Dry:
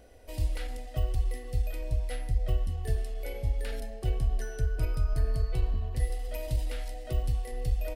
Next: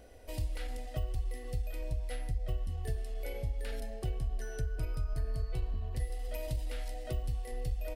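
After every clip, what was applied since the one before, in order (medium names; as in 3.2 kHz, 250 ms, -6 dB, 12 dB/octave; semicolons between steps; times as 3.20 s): compression 2:1, threshold -35 dBFS, peak gain reduction 8 dB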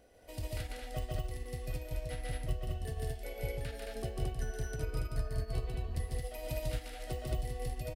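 bass shelf 66 Hz -10 dB; on a send: loudspeakers at several distances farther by 50 m -1 dB, 76 m -2 dB; on the sum: upward expansion 1.5:1, over -46 dBFS; trim +2 dB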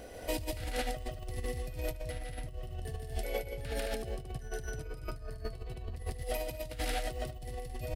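compressor with a negative ratio -46 dBFS, ratio -1; trim +7.5 dB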